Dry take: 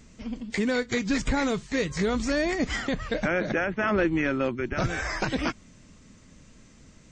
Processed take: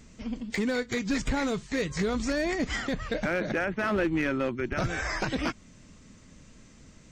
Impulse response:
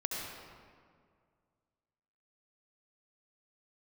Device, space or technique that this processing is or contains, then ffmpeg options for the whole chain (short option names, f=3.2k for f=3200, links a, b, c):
limiter into clipper: -af "alimiter=limit=-18dB:level=0:latency=1:release=339,asoftclip=type=hard:threshold=-21dB"